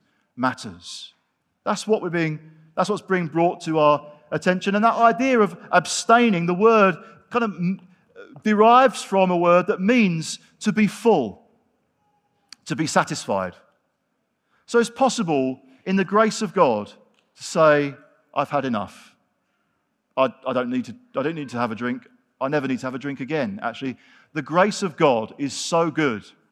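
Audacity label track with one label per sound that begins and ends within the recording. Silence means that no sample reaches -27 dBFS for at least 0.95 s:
12.530000	13.490000	sound
14.710000	18.860000	sound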